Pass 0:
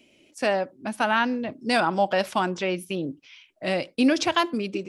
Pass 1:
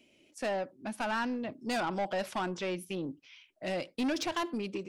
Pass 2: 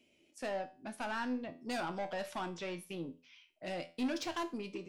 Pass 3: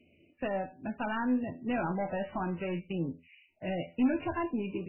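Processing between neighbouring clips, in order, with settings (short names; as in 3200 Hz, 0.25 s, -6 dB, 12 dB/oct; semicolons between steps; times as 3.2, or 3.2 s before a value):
soft clip -21 dBFS, distortion -10 dB; gain -6 dB
resonator 84 Hz, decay 0.35 s, harmonics all, mix 70%; gain +1 dB
bell 84 Hz +15 dB 2.4 oct; gain +3.5 dB; MP3 8 kbps 12000 Hz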